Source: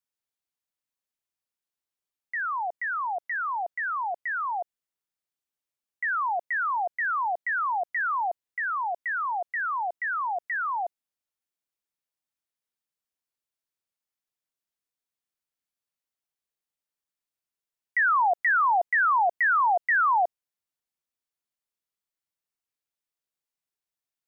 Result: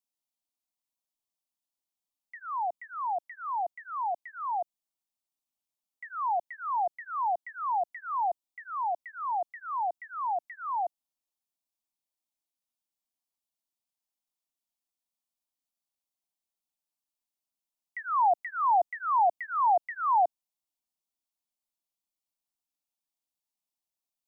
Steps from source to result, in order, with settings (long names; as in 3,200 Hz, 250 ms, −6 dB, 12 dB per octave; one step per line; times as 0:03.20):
phaser with its sweep stopped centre 440 Hz, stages 6